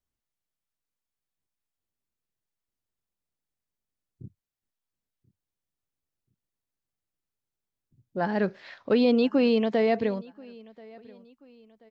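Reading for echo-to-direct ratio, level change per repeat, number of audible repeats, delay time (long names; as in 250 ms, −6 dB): −23.5 dB, −8.0 dB, 2, 1,033 ms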